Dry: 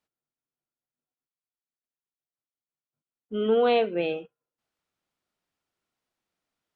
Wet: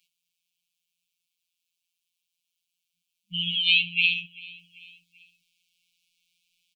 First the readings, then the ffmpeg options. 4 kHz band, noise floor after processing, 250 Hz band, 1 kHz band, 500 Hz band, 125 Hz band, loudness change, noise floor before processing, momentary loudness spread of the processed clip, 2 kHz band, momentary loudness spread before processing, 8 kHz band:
+16.0 dB, -83 dBFS, -12.0 dB, under -40 dB, under -40 dB, +1.5 dB, +2.5 dB, under -85 dBFS, 19 LU, +13.5 dB, 14 LU, n/a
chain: -filter_complex "[0:a]highshelf=f=1.9k:t=q:w=3:g=13.5,afftfilt=real='hypot(re,im)*cos(PI*b)':imag='0':win_size=1024:overlap=0.75,acrossover=split=180|1200[a][b][c];[a]acompressor=threshold=-51dB:ratio=4[d];[b]acompressor=threshold=-36dB:ratio=4[e];[c]acompressor=threshold=-19dB:ratio=4[f];[d][e][f]amix=inputs=3:normalize=0,afftfilt=real='re*(1-between(b*sr/4096,200,2100))':imag='im*(1-between(b*sr/4096,200,2100))':win_size=4096:overlap=0.75,asplit=2[g][h];[h]aecho=0:1:389|778|1167:0.0794|0.0397|0.0199[i];[g][i]amix=inputs=2:normalize=0,volume=2.5dB"

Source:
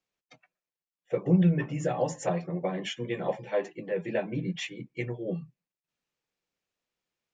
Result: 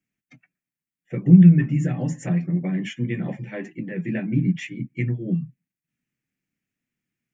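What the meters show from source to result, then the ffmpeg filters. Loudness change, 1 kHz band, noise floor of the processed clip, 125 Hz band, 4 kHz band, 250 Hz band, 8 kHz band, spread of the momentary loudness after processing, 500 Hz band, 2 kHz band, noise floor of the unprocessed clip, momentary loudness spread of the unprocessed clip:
+9.5 dB, -7.5 dB, under -85 dBFS, +11.5 dB, -3.0 dB, +11.0 dB, n/a, 19 LU, -5.0 dB, +3.5 dB, under -85 dBFS, 12 LU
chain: -af "equalizer=f=125:t=o:w=1:g=9,equalizer=f=250:t=o:w=1:g=12,equalizer=f=500:t=o:w=1:g=-11,equalizer=f=1k:t=o:w=1:g=-11,equalizer=f=2k:t=o:w=1:g=8,equalizer=f=4k:t=o:w=1:g=-11,volume=2dB"

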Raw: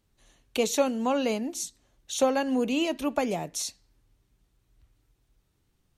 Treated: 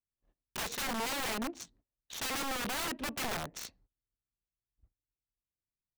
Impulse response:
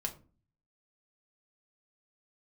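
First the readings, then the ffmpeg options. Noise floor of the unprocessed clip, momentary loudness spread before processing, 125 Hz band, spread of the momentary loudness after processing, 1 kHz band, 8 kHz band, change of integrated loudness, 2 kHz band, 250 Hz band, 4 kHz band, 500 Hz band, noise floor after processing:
-72 dBFS, 10 LU, -4.5 dB, 12 LU, -6.0 dB, -6.0 dB, -7.5 dB, -0.5 dB, -13.5 dB, -2.5 dB, -16.0 dB, under -85 dBFS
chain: -af "adynamicsmooth=sensitivity=6.5:basefreq=1.1k,agate=range=-26dB:threshold=-59dB:ratio=16:detection=peak,aeval=exprs='(mod(21.1*val(0)+1,2)-1)/21.1':c=same,volume=-4dB"

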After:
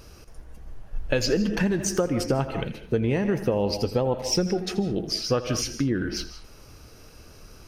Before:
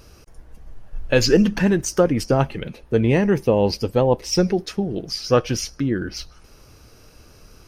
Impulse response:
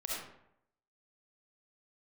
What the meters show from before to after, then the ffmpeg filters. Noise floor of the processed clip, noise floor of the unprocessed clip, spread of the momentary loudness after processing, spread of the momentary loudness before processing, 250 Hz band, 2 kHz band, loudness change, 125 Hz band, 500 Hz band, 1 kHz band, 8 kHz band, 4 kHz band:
-48 dBFS, -49 dBFS, 7 LU, 9 LU, -5.5 dB, -5.0 dB, -5.5 dB, -5.5 dB, -6.0 dB, -6.5 dB, -2.0 dB, -2.5 dB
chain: -filter_complex "[0:a]asplit=2[a][b];[1:a]atrim=start_sample=2205,atrim=end_sample=6615,adelay=83[c];[b][c]afir=irnorm=-1:irlink=0,volume=-13dB[d];[a][d]amix=inputs=2:normalize=0,acompressor=threshold=-20dB:ratio=6"

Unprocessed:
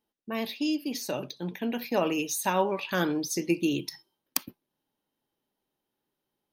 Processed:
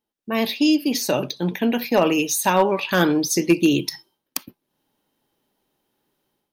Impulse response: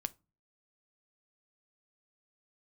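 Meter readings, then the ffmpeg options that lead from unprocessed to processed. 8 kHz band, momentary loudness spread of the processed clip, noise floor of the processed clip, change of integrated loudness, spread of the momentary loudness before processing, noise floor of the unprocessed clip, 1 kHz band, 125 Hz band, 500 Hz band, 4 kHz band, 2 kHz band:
+8.5 dB, 12 LU, -82 dBFS, +9.5 dB, 7 LU, -85 dBFS, +8.5 dB, +9.5 dB, +9.0 dB, +9.5 dB, +9.0 dB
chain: -af "dynaudnorm=f=110:g=5:m=12.5dB,asoftclip=type=hard:threshold=-6dB,volume=-1.5dB"

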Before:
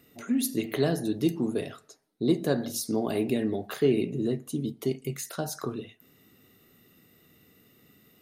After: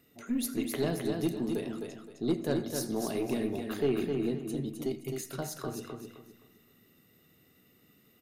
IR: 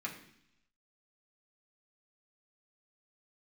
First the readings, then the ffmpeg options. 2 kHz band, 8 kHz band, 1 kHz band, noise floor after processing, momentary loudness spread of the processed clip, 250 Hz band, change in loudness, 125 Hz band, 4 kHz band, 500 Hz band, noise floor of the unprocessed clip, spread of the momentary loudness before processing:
-4.0 dB, -4.0 dB, -3.0 dB, -65 dBFS, 9 LU, -4.0 dB, -4.5 dB, -4.5 dB, -4.0 dB, -4.0 dB, -61 dBFS, 9 LU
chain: -filter_complex "[0:a]aeval=exprs='0.266*(cos(1*acos(clip(val(0)/0.266,-1,1)))-cos(1*PI/2))+0.0211*(cos(5*acos(clip(val(0)/0.266,-1,1)))-cos(5*PI/2))+0.0119*(cos(6*acos(clip(val(0)/0.266,-1,1)))-cos(6*PI/2))+0.00944*(cos(7*acos(clip(val(0)/0.266,-1,1)))-cos(7*PI/2))':c=same,aecho=1:1:260|520|780|1040:0.562|0.163|0.0473|0.0137,asplit=2[a][b];[1:a]atrim=start_sample=2205,adelay=82[c];[b][c]afir=irnorm=-1:irlink=0,volume=-17dB[d];[a][d]amix=inputs=2:normalize=0,volume=-6.5dB"

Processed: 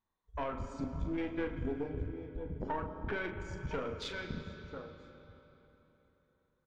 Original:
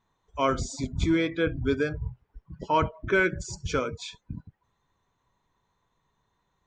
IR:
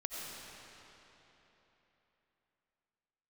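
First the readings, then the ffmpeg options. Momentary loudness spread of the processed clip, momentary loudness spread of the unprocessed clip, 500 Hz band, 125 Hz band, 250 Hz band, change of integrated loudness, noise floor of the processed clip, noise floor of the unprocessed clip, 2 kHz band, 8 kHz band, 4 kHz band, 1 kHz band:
10 LU, 17 LU, -11.0 dB, -9.0 dB, -10.0 dB, -12.0 dB, -79 dBFS, -76 dBFS, -13.0 dB, -20.0 dB, -10.5 dB, -12.0 dB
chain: -filter_complex "[0:a]aecho=1:1:986:0.1,acompressor=threshold=-36dB:ratio=10,flanger=delay=3.4:depth=1.1:regen=-51:speed=1.5:shape=sinusoidal,afwtdn=0.00355,asplit=2[a][b];[1:a]atrim=start_sample=2205,lowpass=5.3k[c];[b][c]afir=irnorm=-1:irlink=0,volume=-4dB[d];[a][d]amix=inputs=2:normalize=0,aeval=exprs='(tanh(35.5*val(0)+0.5)-tanh(0.5))/35.5':c=same,asplit=2[e][f];[f]adelay=39,volume=-8.5dB[g];[e][g]amix=inputs=2:normalize=0,volume=5dB"

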